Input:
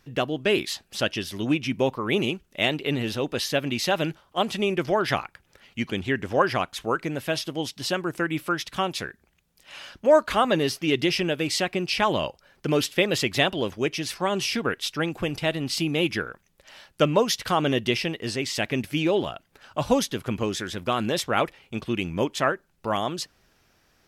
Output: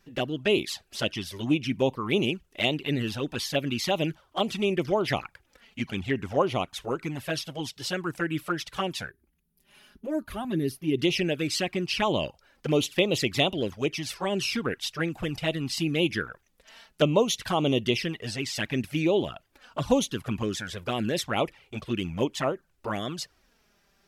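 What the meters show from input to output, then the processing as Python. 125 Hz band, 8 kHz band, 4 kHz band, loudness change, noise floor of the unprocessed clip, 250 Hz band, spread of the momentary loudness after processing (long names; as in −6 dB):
−0.5 dB, −2.5 dB, −2.5 dB, −2.5 dB, −66 dBFS, −1.5 dB, 9 LU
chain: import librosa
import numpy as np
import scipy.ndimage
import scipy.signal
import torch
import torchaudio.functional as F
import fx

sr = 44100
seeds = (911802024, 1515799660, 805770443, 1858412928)

y = fx.spec_box(x, sr, start_s=9.1, length_s=1.89, low_hz=410.0, high_hz=9200.0, gain_db=-12)
y = fx.env_flanger(y, sr, rest_ms=5.2, full_db=-19.5)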